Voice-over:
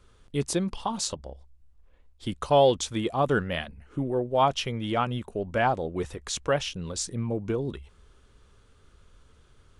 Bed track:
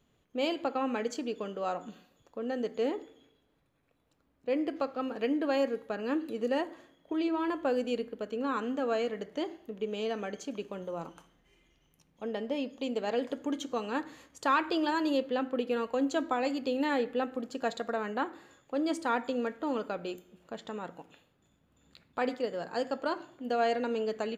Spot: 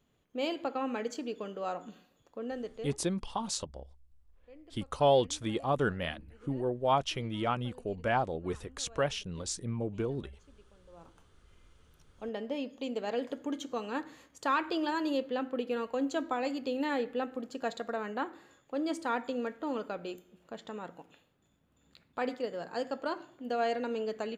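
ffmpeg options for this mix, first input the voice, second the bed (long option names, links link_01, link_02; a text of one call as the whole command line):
ffmpeg -i stem1.wav -i stem2.wav -filter_complex "[0:a]adelay=2500,volume=-5dB[link_01];[1:a]volume=19.5dB,afade=type=out:start_time=2.42:duration=0.59:silence=0.0794328,afade=type=in:start_time=10.83:duration=1:silence=0.0794328[link_02];[link_01][link_02]amix=inputs=2:normalize=0" out.wav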